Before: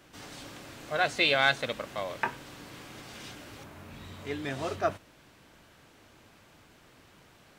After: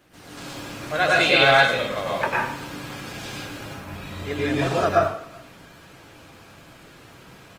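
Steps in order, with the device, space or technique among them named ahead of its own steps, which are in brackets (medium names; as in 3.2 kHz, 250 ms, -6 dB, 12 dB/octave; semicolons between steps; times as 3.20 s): speakerphone in a meeting room (reverberation RT60 0.65 s, pre-delay 93 ms, DRR -5 dB; speakerphone echo 380 ms, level -28 dB; level rider gain up to 5 dB; Opus 24 kbps 48 kHz)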